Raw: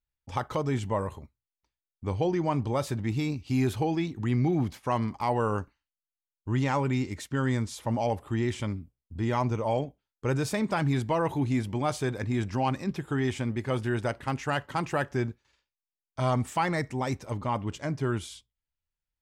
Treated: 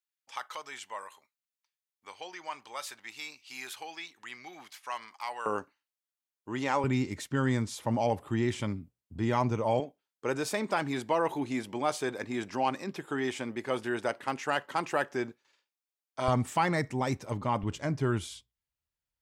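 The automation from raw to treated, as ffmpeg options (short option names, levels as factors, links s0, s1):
-af "asetnsamples=n=441:p=0,asendcmd='5.46 highpass f 320;6.84 highpass f 110;9.8 highpass f 310;16.28 highpass f 100;17.63 highpass f 48',highpass=1400"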